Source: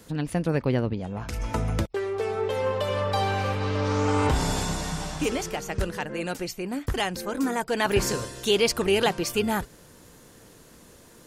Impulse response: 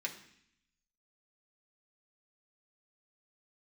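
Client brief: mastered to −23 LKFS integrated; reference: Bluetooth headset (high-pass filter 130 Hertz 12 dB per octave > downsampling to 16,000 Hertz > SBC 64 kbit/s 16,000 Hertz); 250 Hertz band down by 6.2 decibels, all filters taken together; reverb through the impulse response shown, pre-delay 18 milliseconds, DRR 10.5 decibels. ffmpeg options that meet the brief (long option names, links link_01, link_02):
-filter_complex "[0:a]equalizer=frequency=250:width_type=o:gain=-8,asplit=2[link_01][link_02];[1:a]atrim=start_sample=2205,adelay=18[link_03];[link_02][link_03]afir=irnorm=-1:irlink=0,volume=-12dB[link_04];[link_01][link_04]amix=inputs=2:normalize=0,highpass=130,aresample=16000,aresample=44100,volume=5.5dB" -ar 16000 -c:a sbc -b:a 64k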